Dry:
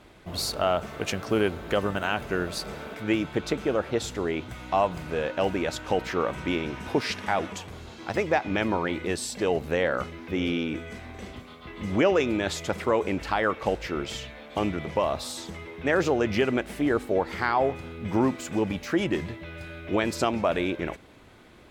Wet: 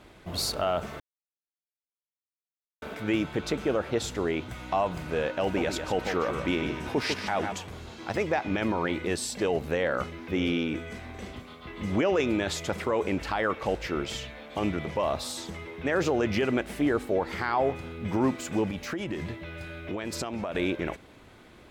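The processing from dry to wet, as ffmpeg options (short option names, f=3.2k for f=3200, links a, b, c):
-filter_complex "[0:a]asettb=1/sr,asplit=3[a][b][c];[a]atrim=end=5.424[d];[b]atrim=start=5.42:end=7.52,asetpts=PTS-STARTPTS,afade=t=in:d=0.004:c=qsin,afade=t=out:st=2.096:d=0.004:c=qsin,aecho=1:1:149:0.355,atrim=end_sample=92610[e];[c]atrim=start=7.516[f];[d][e]acrossfade=d=0.004:c1=hsin:c2=qsin[g];[g][f]acrossfade=d=0.004:c1=qsin:c2=hsin,asettb=1/sr,asplit=3[h][i][j];[h]atrim=end=18.684[k];[i]atrim=start=18.68:end=20.55,asetpts=PTS-STARTPTS,afade=t=in:d=0.004:c=qsin,afade=t=out:st=1.866:d=0.004:c=qsin,acompressor=threshold=-28dB:ratio=12:attack=3.2:release=140:knee=1:detection=peak[l];[j]atrim=start=20.546[m];[k][l]acrossfade=d=0.004:c1=hsin:c2=qsin[n];[n][m]acrossfade=d=0.004:c1=qsin:c2=hsin,asplit=3[o][p][q];[o]atrim=end=1,asetpts=PTS-STARTPTS,afade=t=out:st=0.996:d=0.004:c=hsin[r];[p]atrim=start=1:end=2.82,asetpts=PTS-STARTPTS,volume=0[s];[q]atrim=start=2.82,asetpts=PTS-STARTPTS,afade=t=in:d=0.004:c=hsin[t];[r][s][t]concat=n=3:v=0:a=1,alimiter=limit=-16.5dB:level=0:latency=1:release=11"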